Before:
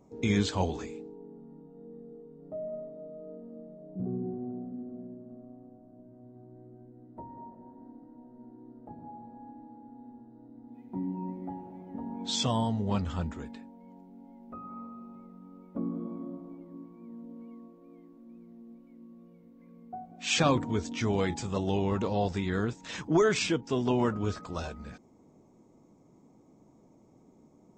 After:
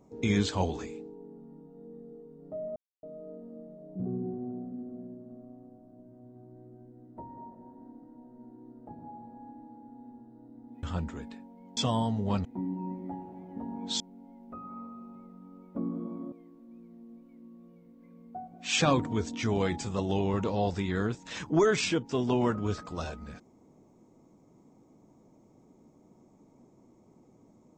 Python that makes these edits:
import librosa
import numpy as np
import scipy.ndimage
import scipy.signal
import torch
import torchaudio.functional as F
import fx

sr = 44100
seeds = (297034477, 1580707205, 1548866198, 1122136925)

y = fx.edit(x, sr, fx.silence(start_s=2.76, length_s=0.27),
    fx.swap(start_s=10.83, length_s=1.55, other_s=13.06, other_length_s=0.94),
    fx.cut(start_s=16.32, length_s=1.58), tone=tone)